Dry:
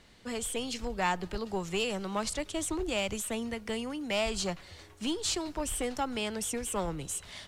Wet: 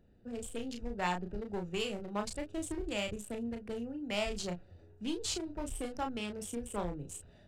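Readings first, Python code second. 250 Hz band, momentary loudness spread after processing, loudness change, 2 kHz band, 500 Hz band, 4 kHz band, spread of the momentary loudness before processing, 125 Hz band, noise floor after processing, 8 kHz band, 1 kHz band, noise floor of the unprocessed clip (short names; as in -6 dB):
-3.0 dB, 6 LU, -5.0 dB, -5.5 dB, -4.5 dB, -6.0 dB, 5 LU, -2.5 dB, -60 dBFS, -8.5 dB, -5.0 dB, -54 dBFS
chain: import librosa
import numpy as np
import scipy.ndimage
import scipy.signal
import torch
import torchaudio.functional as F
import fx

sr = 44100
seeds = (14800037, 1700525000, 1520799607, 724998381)

y = fx.wiener(x, sr, points=41)
y = fx.doubler(y, sr, ms=34.0, db=-5.5)
y = y * librosa.db_to_amplitude(-3.5)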